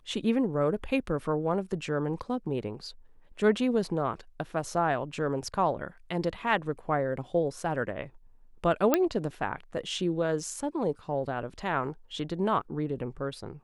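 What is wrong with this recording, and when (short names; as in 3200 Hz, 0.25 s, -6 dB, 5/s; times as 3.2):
8.94 pop -8 dBFS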